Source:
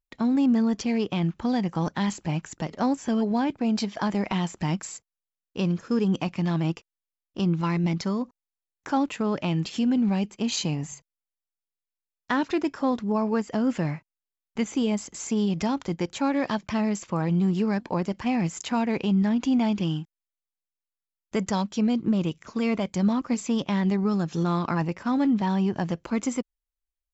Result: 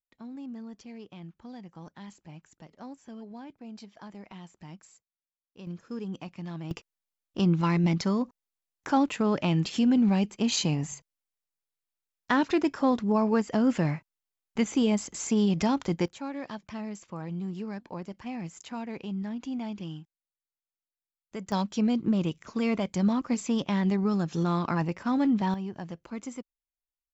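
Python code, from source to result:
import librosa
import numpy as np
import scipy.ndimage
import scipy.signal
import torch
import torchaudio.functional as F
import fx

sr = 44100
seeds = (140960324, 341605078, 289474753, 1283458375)

y = fx.gain(x, sr, db=fx.steps((0.0, -19.0), (5.67, -12.5), (6.71, 0.5), (16.08, -11.5), (21.52, -2.0), (25.54, -11.0)))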